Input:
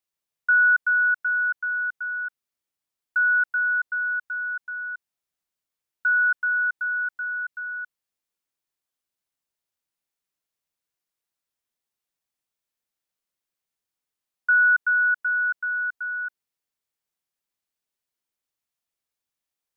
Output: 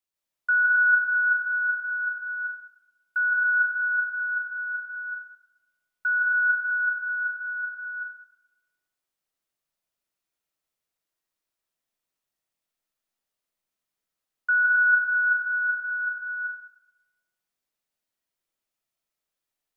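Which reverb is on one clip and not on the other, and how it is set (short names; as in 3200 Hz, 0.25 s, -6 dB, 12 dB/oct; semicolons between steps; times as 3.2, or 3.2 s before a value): digital reverb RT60 1.1 s, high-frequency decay 0.4×, pre-delay 0.115 s, DRR -4 dB; gain -3.5 dB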